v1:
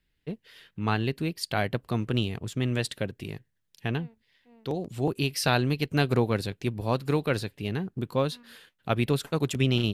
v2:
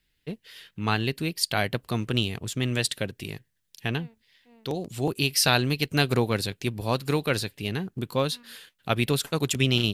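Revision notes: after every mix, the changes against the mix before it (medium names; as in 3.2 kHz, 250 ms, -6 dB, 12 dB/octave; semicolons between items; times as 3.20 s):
master: add treble shelf 2.4 kHz +9.5 dB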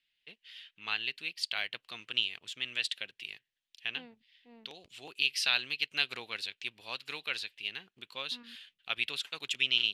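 first voice: add band-pass filter 2.9 kHz, Q 2.2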